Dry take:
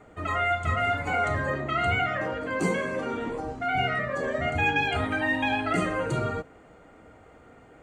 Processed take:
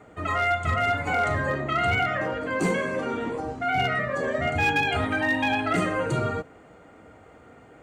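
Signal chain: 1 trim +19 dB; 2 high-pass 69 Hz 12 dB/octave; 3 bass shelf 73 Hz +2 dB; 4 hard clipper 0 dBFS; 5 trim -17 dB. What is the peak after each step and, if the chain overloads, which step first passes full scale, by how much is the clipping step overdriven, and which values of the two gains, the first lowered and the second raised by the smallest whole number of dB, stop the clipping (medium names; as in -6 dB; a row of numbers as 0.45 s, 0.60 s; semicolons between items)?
+5.5 dBFS, +6.5 dBFS, +6.5 dBFS, 0.0 dBFS, -17.0 dBFS; step 1, 6.5 dB; step 1 +12 dB, step 5 -10 dB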